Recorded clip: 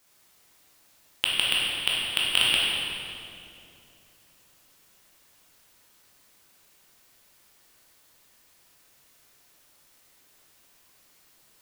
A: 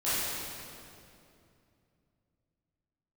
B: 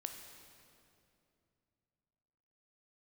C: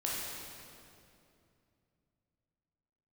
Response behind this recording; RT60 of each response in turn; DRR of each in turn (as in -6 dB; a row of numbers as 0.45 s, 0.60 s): C; 2.6 s, 2.7 s, 2.6 s; -14.0 dB, 4.5 dB, -5.5 dB